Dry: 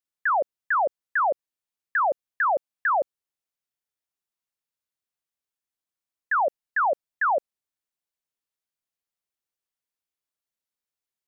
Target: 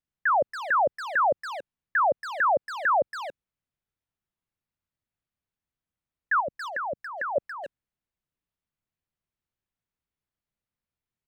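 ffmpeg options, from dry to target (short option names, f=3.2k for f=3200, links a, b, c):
-filter_complex "[0:a]bass=f=250:g=15,treble=f=4k:g=-11,asettb=1/sr,asplit=3[a][b][c];[a]atrim=end=6.404[d];[b]atrim=start=6.4:end=7.36,asetpts=PTS-STARTPTS,afade=t=in:d=0.004:c=qsin,afade=t=out:st=0.956:d=0.004:c=qsin,acrossover=split=330|3000[e][f][g];[f]acompressor=threshold=-32dB:ratio=5[h];[e][h][g]amix=inputs=3:normalize=0[i];[c]atrim=start=7.356[j];[d][i]acrossfade=d=0.004:c1=hsin:c2=qsin[k];[k][j]acrossfade=d=0.004:c1=qsin:c2=hsin,asplit=2[l][m];[m]adelay=280,highpass=300,lowpass=3.4k,asoftclip=type=hard:threshold=-27.5dB,volume=-6dB[n];[l][n]amix=inputs=2:normalize=0"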